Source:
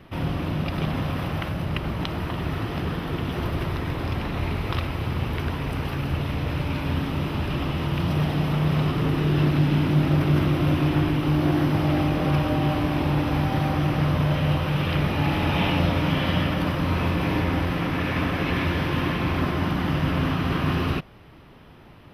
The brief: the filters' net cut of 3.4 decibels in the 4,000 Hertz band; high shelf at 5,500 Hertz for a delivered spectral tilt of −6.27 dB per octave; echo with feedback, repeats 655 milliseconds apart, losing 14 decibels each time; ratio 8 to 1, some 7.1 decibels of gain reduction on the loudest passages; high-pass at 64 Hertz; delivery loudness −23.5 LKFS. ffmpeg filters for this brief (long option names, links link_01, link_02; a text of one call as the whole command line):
ffmpeg -i in.wav -af "highpass=64,equalizer=frequency=4000:width_type=o:gain=-7.5,highshelf=frequency=5500:gain=6.5,acompressor=threshold=-24dB:ratio=8,aecho=1:1:655|1310:0.2|0.0399,volume=5.5dB" out.wav